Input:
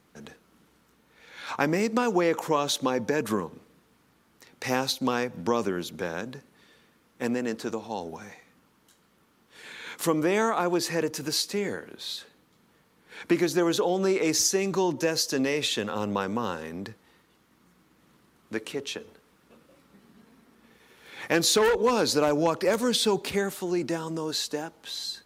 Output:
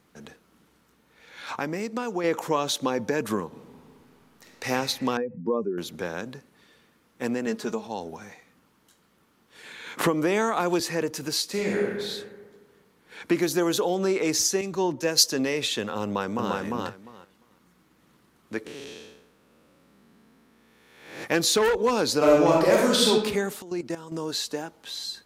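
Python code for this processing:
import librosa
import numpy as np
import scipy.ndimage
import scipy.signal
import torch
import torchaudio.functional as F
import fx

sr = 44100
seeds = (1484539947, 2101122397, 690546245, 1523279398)

y = fx.reverb_throw(x, sr, start_s=3.46, length_s=1.21, rt60_s=2.5, drr_db=-0.5)
y = fx.spec_expand(y, sr, power=2.2, at=(5.17, 5.78))
y = fx.comb(y, sr, ms=4.8, depth=0.65, at=(7.46, 7.87))
y = fx.band_squash(y, sr, depth_pct=100, at=(9.97, 10.8))
y = fx.reverb_throw(y, sr, start_s=11.46, length_s=0.41, rt60_s=1.6, drr_db=-3.0)
y = fx.high_shelf(y, sr, hz=8700.0, db=9.5, at=(13.42, 13.95))
y = fx.band_widen(y, sr, depth_pct=100, at=(14.61, 15.24))
y = fx.echo_throw(y, sr, start_s=16.03, length_s=0.51, ms=350, feedback_pct=15, wet_db=-1.5)
y = fx.spec_blur(y, sr, span_ms=289.0, at=(18.65, 21.23), fade=0.02)
y = fx.reverb_throw(y, sr, start_s=22.17, length_s=0.93, rt60_s=0.85, drr_db=-3.5)
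y = fx.level_steps(y, sr, step_db=14, at=(23.62, 24.12))
y = fx.edit(y, sr, fx.clip_gain(start_s=1.6, length_s=0.64, db=-5.5), tone=tone)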